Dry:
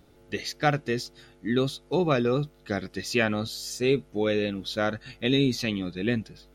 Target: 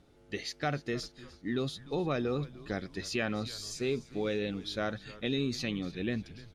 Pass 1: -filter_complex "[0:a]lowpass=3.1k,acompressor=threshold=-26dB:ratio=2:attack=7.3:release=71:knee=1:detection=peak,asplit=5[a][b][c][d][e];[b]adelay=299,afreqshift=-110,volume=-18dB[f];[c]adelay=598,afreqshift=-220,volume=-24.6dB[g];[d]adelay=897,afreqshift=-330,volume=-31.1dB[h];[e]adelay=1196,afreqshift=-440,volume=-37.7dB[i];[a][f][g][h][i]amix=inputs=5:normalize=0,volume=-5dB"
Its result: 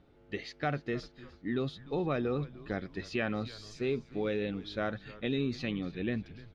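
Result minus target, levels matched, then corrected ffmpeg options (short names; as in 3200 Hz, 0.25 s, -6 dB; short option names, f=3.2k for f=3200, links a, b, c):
8000 Hz band -12.5 dB
-filter_complex "[0:a]lowpass=9.6k,acompressor=threshold=-26dB:ratio=2:attack=7.3:release=71:knee=1:detection=peak,asplit=5[a][b][c][d][e];[b]adelay=299,afreqshift=-110,volume=-18dB[f];[c]adelay=598,afreqshift=-220,volume=-24.6dB[g];[d]adelay=897,afreqshift=-330,volume=-31.1dB[h];[e]adelay=1196,afreqshift=-440,volume=-37.7dB[i];[a][f][g][h][i]amix=inputs=5:normalize=0,volume=-5dB"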